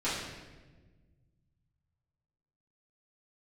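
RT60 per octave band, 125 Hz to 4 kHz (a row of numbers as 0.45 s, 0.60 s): 3.0 s, 2.0 s, 1.6 s, 1.1 s, 1.1 s, 0.95 s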